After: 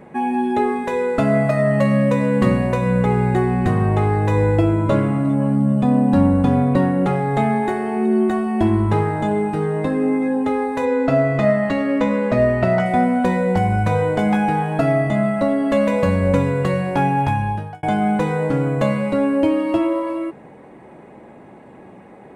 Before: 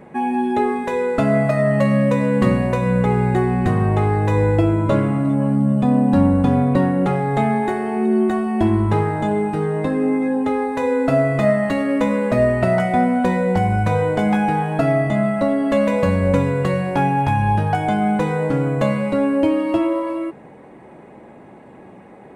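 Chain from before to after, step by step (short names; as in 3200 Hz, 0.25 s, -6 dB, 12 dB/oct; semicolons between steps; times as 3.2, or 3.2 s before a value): 10.85–12.86 LPF 6200 Hz 12 dB/oct; 17.24–17.83 fade out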